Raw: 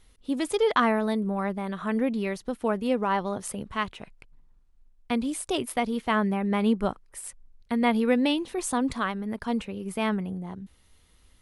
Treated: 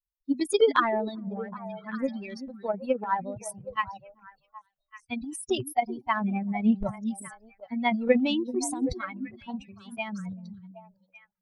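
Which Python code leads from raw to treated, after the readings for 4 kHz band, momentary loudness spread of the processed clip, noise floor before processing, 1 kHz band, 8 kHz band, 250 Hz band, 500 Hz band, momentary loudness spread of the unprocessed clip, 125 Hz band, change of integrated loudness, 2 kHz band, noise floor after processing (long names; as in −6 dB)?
−2.5 dB, 16 LU, −60 dBFS, −1.0 dB, −1.5 dB, −3.0 dB, −0.5 dB, 11 LU, −3.5 dB, −2.0 dB, −2.0 dB, −80 dBFS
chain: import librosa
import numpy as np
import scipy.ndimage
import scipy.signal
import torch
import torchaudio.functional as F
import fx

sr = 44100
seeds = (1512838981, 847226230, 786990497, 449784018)

y = fx.bin_expand(x, sr, power=3.0)
y = fx.transient(y, sr, attack_db=8, sustain_db=12)
y = fx.echo_stepped(y, sr, ms=385, hz=260.0, octaves=1.4, feedback_pct=70, wet_db=-8.5)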